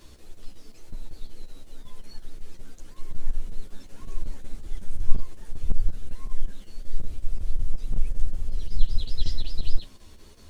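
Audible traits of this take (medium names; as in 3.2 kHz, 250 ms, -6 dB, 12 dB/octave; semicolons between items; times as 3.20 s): chopped level 5.4 Hz, depth 65%, duty 80%; a quantiser's noise floor 12-bit, dither triangular; a shimmering, thickened sound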